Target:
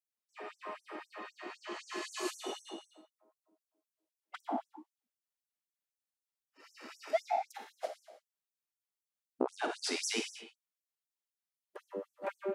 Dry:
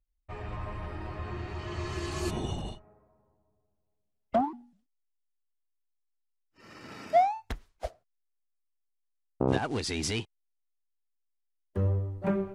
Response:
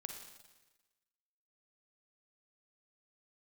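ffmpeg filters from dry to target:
-filter_complex "[0:a]asettb=1/sr,asplit=3[link_01][link_02][link_03];[link_01]atrim=end=2.464[link_04];[link_02]atrim=start=2.46:end=4.51,asetpts=PTS-STARTPTS,afade=type=in:duration=0.004:curve=qsin,afade=type=out:start_time=2.046:duration=0.004:curve=qsin,equalizer=frequency=320:width_type=o:width=0.29:gain=13[link_05];[link_03]atrim=start=4.506[link_06];[link_04][link_05]acrossfade=duration=0.004:curve1=hsin:curve2=qsin[link_07];[link_07][link_06]acrossfade=duration=0.004:curve1=qsin:curve2=hsin[link_08];[1:a]atrim=start_sample=2205,afade=type=out:start_time=0.39:duration=0.01,atrim=end_sample=17640[link_09];[link_08][link_09]afir=irnorm=-1:irlink=0,afftfilt=real='re*gte(b*sr/1024,210*pow(5700/210,0.5+0.5*sin(2*PI*3.9*pts/sr)))':imag='im*gte(b*sr/1024,210*pow(5700/210,0.5+0.5*sin(2*PI*3.9*pts/sr)))':win_size=1024:overlap=0.75,volume=2.5dB"

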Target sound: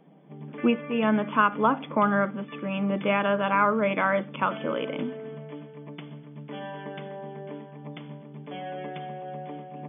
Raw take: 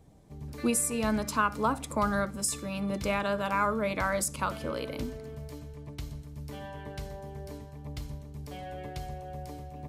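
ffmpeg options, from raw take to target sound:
ffmpeg -i in.wav -af "afftfilt=real='re*between(b*sr/4096,150,3500)':imag='im*between(b*sr/4096,150,3500)':win_size=4096:overlap=0.75,volume=5.5dB" out.wav

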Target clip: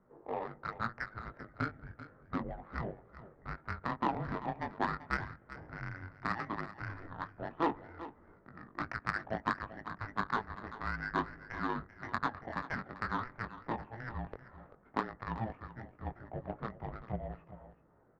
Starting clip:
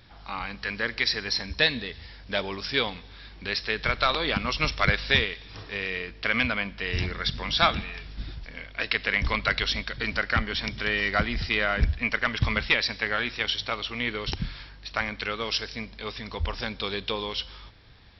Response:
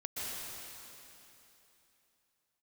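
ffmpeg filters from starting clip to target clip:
-filter_complex "[0:a]acompressor=threshold=-31dB:ratio=2,flanger=delay=18.5:depth=3.9:speed=0.12,highpass=frequency=490:width_type=q:width=0.5412,highpass=frequency=490:width_type=q:width=1.307,lowpass=frequency=2200:width_type=q:width=0.5176,lowpass=frequency=2200:width_type=q:width=0.7071,lowpass=frequency=2200:width_type=q:width=1.932,afreqshift=-350,adynamicsmooth=sensitivity=1.5:basefreq=620,asplit=2[link_01][link_02];[link_02]aecho=0:1:389:0.188[link_03];[link_01][link_03]amix=inputs=2:normalize=0,volume=4.5dB"

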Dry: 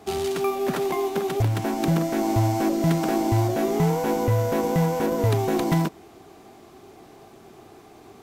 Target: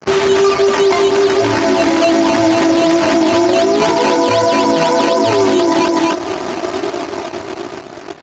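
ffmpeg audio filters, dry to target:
ffmpeg -i in.wav -af "aecho=1:1:3.2:0.77,dynaudnorm=framelen=450:gausssize=7:maxgain=16.5dB,highpass=370,flanger=delay=17:depth=3.5:speed=1.3,aeval=exprs='sgn(val(0))*max(abs(val(0))-0.00398,0)':channel_layout=same,acrusher=bits=8:mode=log:mix=0:aa=0.000001,aecho=1:1:250:0.316,acompressor=threshold=-36dB:ratio=3,asetnsamples=nb_out_samples=441:pad=0,asendcmd='3.99 highshelf g -8',highshelf=frequency=3600:gain=3.5,acrusher=samples=10:mix=1:aa=0.000001:lfo=1:lforange=6:lforate=4,alimiter=level_in=32dB:limit=-1dB:release=50:level=0:latency=1,volume=-4dB" -ar 16000 -c:a libspeex -b:a 34k out.spx

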